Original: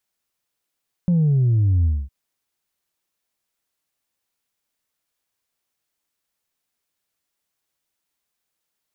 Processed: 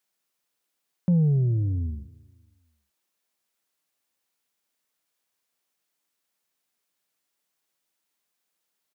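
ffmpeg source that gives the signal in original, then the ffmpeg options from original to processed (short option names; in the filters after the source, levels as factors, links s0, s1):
-f lavfi -i "aevalsrc='0.188*clip((1.01-t)/0.24,0,1)*tanh(1.12*sin(2*PI*180*1.01/log(65/180)*(exp(log(65/180)*t/1.01)-1)))/tanh(1.12)':d=1.01:s=44100"
-af "highpass=150,aecho=1:1:274|548|822:0.0668|0.0267|0.0107"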